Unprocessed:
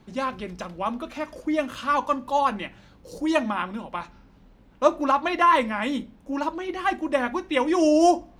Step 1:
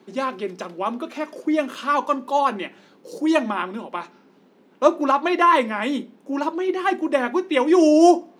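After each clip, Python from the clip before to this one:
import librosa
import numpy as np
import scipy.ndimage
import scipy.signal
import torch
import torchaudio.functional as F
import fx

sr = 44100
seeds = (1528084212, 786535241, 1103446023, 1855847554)

y = scipy.signal.sosfilt(scipy.signal.butter(4, 200.0, 'highpass', fs=sr, output='sos'), x)
y = fx.peak_eq(y, sr, hz=390.0, db=8.5, octaves=0.42)
y = y * 10.0 ** (2.0 / 20.0)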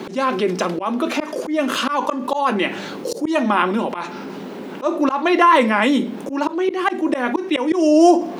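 y = fx.auto_swell(x, sr, attack_ms=284.0)
y = fx.env_flatten(y, sr, amount_pct=50)
y = y * 10.0 ** (1.0 / 20.0)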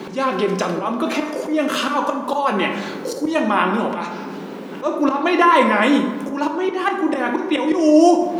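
y = fx.rev_plate(x, sr, seeds[0], rt60_s=1.4, hf_ratio=0.45, predelay_ms=0, drr_db=4.0)
y = y * 10.0 ** (-1.0 / 20.0)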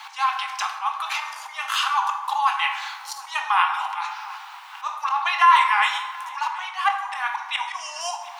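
y = scipy.signal.sosfilt(scipy.signal.cheby1(6, 3, 780.0, 'highpass', fs=sr, output='sos'), x)
y = y + 10.0 ** (-21.0 / 20.0) * np.pad(y, (int(729 * sr / 1000.0), 0))[:len(y)]
y = y * 10.0 ** (1.0 / 20.0)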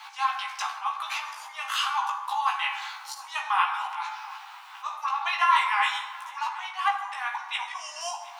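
y = fx.doubler(x, sr, ms=16.0, db=-3.0)
y = y * 10.0 ** (-6.0 / 20.0)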